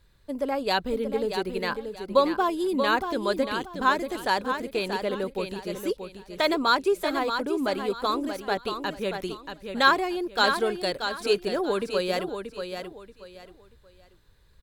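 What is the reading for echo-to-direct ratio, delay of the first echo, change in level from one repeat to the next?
-7.0 dB, 0.632 s, -11.5 dB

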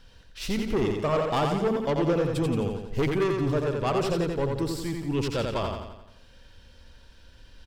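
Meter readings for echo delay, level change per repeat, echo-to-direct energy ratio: 87 ms, -5.5 dB, -2.5 dB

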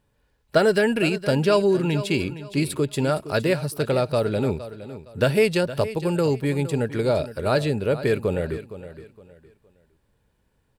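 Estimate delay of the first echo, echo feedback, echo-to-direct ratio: 0.464 s, 29%, -13.5 dB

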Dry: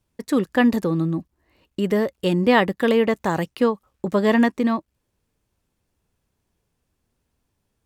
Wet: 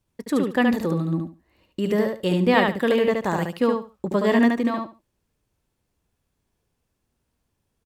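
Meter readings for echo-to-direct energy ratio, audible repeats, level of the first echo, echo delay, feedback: -4.0 dB, 3, -4.0 dB, 72 ms, 19%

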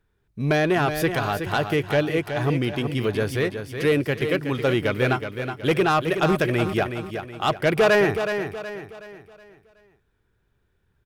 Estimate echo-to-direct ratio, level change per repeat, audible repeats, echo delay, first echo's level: -7.0 dB, -8.0 dB, 4, 0.371 s, -8.0 dB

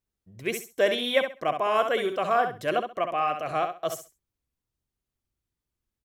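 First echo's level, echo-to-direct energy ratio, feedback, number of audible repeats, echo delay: -7.5 dB, -7.5 dB, 21%, 3, 66 ms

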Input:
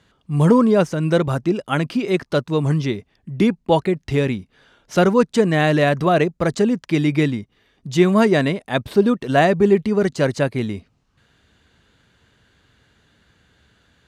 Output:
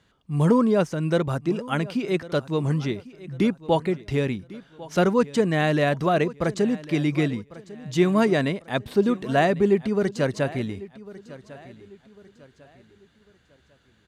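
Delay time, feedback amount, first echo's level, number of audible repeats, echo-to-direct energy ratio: 1.099 s, 36%, -18.5 dB, 2, -18.0 dB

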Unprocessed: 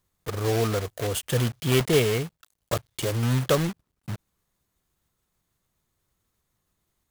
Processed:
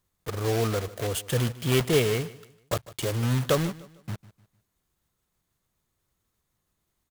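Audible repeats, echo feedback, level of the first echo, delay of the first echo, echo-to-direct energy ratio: 2, 35%, -18.5 dB, 0.151 s, -18.0 dB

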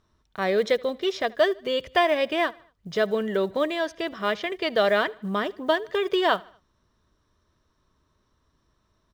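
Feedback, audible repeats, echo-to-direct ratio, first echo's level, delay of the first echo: 47%, 2, -23.0 dB, -24.0 dB, 77 ms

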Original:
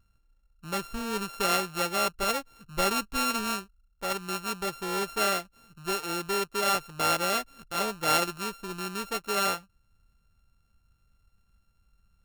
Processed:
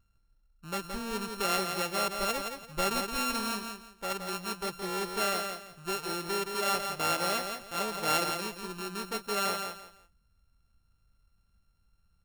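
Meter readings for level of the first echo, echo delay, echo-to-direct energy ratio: -6.0 dB, 0.17 s, -5.5 dB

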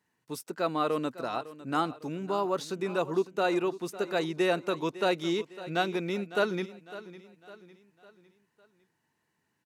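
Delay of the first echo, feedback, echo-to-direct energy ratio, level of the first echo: 0.554 s, 45%, -15.0 dB, -16.0 dB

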